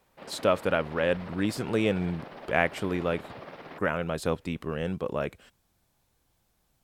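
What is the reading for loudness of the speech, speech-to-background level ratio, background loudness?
-29.5 LUFS, 15.5 dB, -45.0 LUFS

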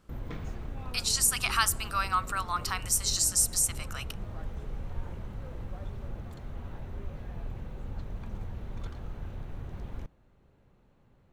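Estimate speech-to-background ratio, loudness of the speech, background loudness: 15.0 dB, -27.0 LUFS, -42.0 LUFS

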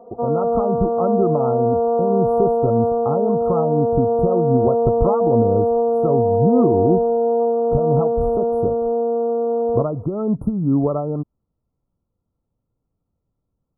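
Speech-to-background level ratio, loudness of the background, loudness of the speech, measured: -4.0 dB, -19.0 LUFS, -23.0 LUFS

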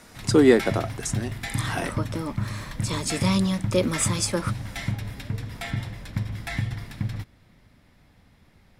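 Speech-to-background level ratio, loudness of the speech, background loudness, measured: 7.0 dB, -24.5 LUFS, -31.5 LUFS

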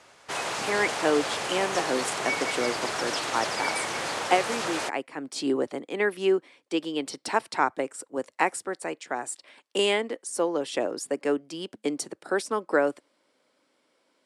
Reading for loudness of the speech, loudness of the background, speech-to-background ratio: -29.0 LUFS, -29.5 LUFS, 0.5 dB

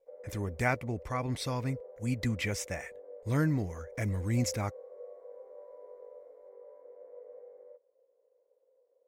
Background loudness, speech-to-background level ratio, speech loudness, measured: -49.0 LUFS, 15.5 dB, -33.5 LUFS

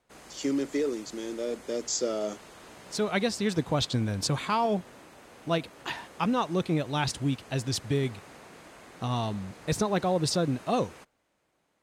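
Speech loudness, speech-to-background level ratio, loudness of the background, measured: -30.0 LUFS, 19.5 dB, -49.5 LUFS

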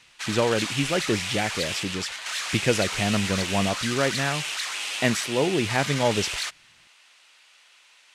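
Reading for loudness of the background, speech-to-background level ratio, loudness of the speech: -28.5 LUFS, 2.0 dB, -26.5 LUFS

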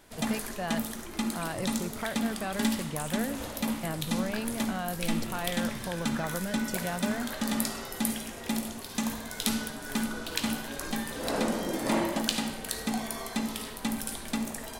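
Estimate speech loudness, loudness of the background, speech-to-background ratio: -36.5 LUFS, -32.5 LUFS, -4.0 dB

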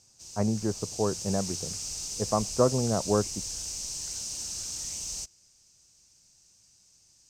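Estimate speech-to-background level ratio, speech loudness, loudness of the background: 4.5 dB, -29.5 LUFS, -34.0 LUFS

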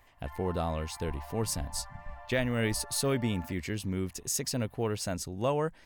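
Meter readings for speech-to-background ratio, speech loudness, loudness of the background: 15.0 dB, -32.5 LUFS, -47.5 LUFS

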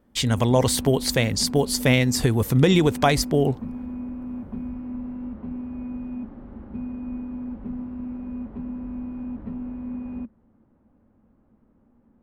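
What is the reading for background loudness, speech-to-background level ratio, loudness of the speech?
-34.0 LUFS, 13.5 dB, -20.5 LUFS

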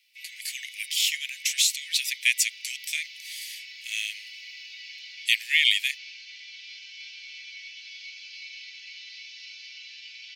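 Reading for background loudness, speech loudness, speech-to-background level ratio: -41.0 LUFS, -25.0 LUFS, 16.0 dB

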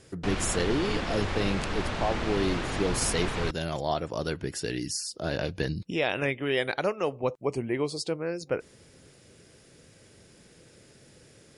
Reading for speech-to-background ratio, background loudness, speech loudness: 2.0 dB, -32.5 LUFS, -30.5 LUFS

